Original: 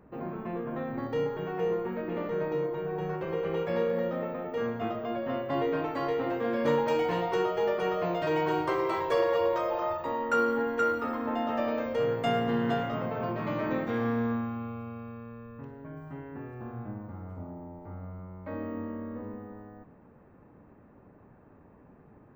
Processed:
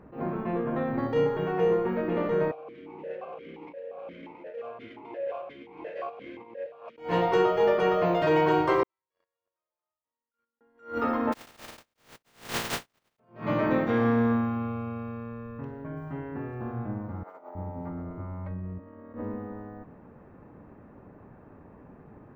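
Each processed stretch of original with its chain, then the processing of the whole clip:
2.51–6.98 s: comb filter that takes the minimum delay 1.9 ms + compressor with a negative ratio -32 dBFS, ratio -0.5 + stepped vowel filter 5.7 Hz
8.83–10.61 s: gate -20 dBFS, range -52 dB + amplifier tone stack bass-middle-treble 5-5-5
11.32–13.18 s: spectral contrast reduction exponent 0.16 + gate -28 dBFS, range -51 dB
17.23–19.14 s: compressor with a negative ratio -42 dBFS, ratio -0.5 + bands offset in time highs, lows 320 ms, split 430 Hz + tape noise reduction on one side only decoder only
whole clip: treble shelf 5.8 kHz -8 dB; attacks held to a fixed rise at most 170 dB/s; trim +5.5 dB

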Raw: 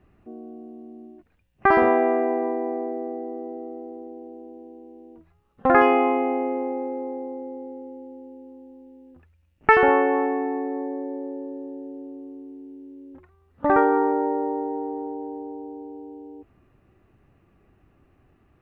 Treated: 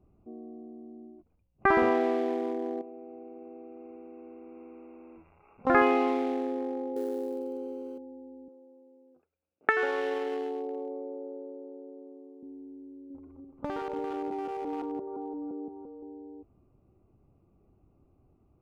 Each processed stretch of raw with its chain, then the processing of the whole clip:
2.81–5.67 s: zero-crossing glitches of -23.5 dBFS + brick-wall FIR low-pass 2.8 kHz + compression 4:1, threshold -38 dBFS
6.96–7.98 s: zero-crossing glitches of -31 dBFS + small resonant body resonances 410/1500/3100 Hz, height 11 dB, ringing for 25 ms
8.48–12.43 s: compression 4:1, threshold -20 dBFS + transient shaper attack +5 dB, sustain -2 dB + cabinet simulation 430–2900 Hz, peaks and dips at 460 Hz +5 dB, 960 Hz -7 dB, 1.6 kHz +9 dB
12.93–16.03 s: backward echo that repeats 172 ms, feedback 63%, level -2 dB + compression 20:1, threshold -23 dBFS
whole clip: local Wiener filter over 25 samples; dynamic bell 710 Hz, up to -4 dB, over -32 dBFS, Q 1.6; trim -4 dB

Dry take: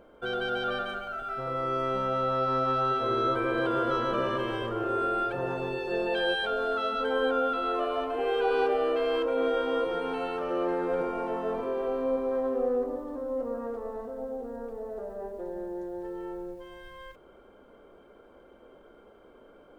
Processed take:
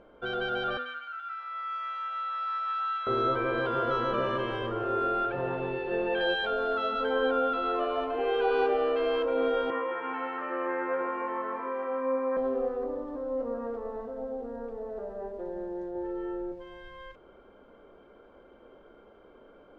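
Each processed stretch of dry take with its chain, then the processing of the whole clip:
0.77–3.07 s: inverse Chebyshev high-pass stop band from 210 Hz, stop band 80 dB + treble shelf 5.3 kHz -9.5 dB
5.25–6.21 s: one-bit delta coder 64 kbps, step -40 dBFS + low-pass 3.1 kHz 24 dB/octave
9.70–12.37 s: cabinet simulation 380–2400 Hz, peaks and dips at 440 Hz -9 dB, 680 Hz -9 dB, 1.1 kHz +5 dB, 1.9 kHz +8 dB + doubling 19 ms -4.5 dB + bit-crushed delay 156 ms, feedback 55%, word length 10-bit, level -13.5 dB
15.91–16.52 s: treble shelf 3.7 kHz -7 dB + doubling 42 ms -2.5 dB
whole clip: low-pass 4.4 kHz 12 dB/octave; de-hum 82.83 Hz, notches 10

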